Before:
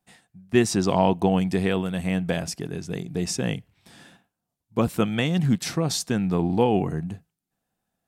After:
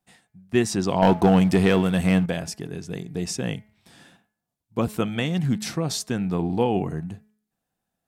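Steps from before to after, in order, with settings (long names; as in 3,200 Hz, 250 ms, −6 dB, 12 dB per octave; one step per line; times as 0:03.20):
hum removal 213.2 Hz, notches 11
0:01.02–0:02.26: leveller curve on the samples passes 2
level −1.5 dB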